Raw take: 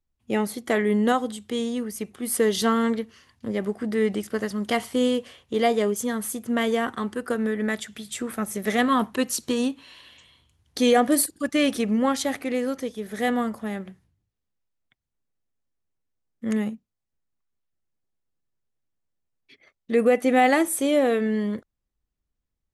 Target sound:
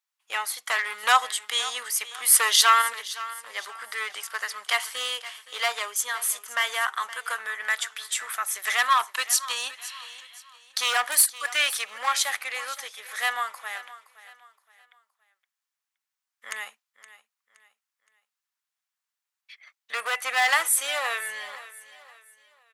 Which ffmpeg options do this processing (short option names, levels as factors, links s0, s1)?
-filter_complex "[0:a]asoftclip=type=hard:threshold=0.15,asettb=1/sr,asplit=3[s0][s1][s2];[s0]atrim=end=1.034[s3];[s1]atrim=start=1.03:end=2.82,asetpts=PTS-STARTPTS,afade=t=in:d=0.004:c=qsin,afade=t=out:st=1.786:d=0.004:c=qsin,acontrast=34[s4];[s2]atrim=start=2.816[s5];[s3][s4]acrossfade=d=0.004:c1=hsin:c2=qsin[s6];[s6][s5]acrossfade=d=0.004:c1=qsin:c2=hsin,highpass=f=1000:w=0.5412,highpass=f=1000:w=1.3066,aecho=1:1:519|1038|1557:0.15|0.0539|0.0194,volume=2"